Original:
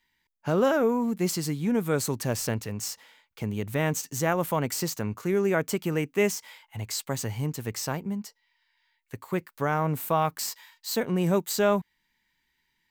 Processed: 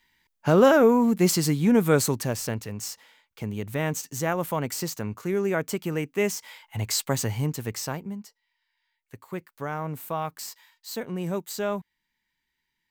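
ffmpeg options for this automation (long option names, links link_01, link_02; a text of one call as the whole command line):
ffmpeg -i in.wav -af "volume=13dB,afade=type=out:start_time=1.93:duration=0.42:silence=0.446684,afade=type=in:start_time=6.25:duration=0.64:silence=0.446684,afade=type=out:start_time=6.89:duration=1.36:silence=0.266073" out.wav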